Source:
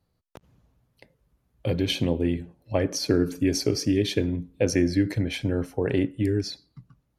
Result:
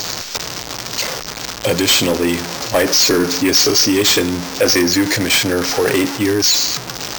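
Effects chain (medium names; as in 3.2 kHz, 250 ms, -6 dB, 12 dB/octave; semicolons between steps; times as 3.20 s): jump at every zero crossing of -31.5 dBFS; peaking EQ 5.8 kHz +14.5 dB 1.1 oct; overdrive pedal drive 25 dB, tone 6 kHz, clips at -1.5 dBFS; dynamic bell 1.3 kHz, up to +3 dB, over -25 dBFS, Q 0.78; careless resampling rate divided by 4×, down none, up hold; trim -2.5 dB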